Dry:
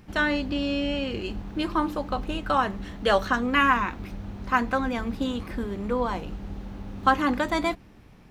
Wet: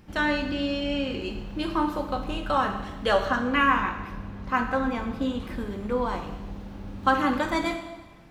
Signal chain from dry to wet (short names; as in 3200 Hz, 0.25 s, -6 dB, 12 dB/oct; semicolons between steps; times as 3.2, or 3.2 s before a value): 3.13–5.4 high shelf 3800 Hz -6 dB; two-slope reverb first 0.94 s, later 2.4 s, from -18 dB, DRR 4 dB; gain -2 dB